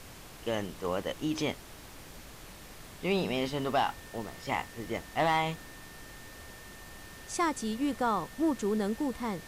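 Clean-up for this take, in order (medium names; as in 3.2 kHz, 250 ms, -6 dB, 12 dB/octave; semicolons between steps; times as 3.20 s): clip repair -19 dBFS; band-stop 1.8 kHz, Q 30; noise print and reduce 28 dB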